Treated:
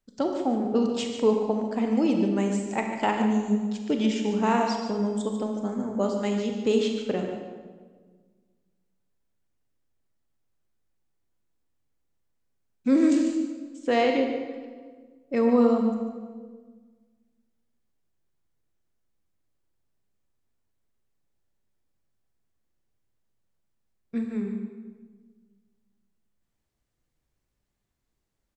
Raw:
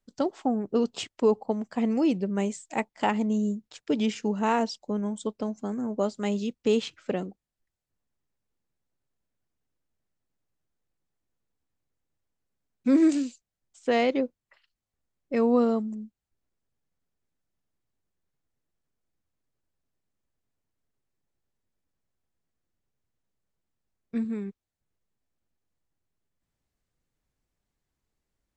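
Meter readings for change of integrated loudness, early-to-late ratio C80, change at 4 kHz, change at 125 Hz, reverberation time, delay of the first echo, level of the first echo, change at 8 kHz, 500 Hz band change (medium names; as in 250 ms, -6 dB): +2.0 dB, 5.0 dB, +2.0 dB, no reading, 1.5 s, 146 ms, -10.0 dB, +1.5 dB, +2.0 dB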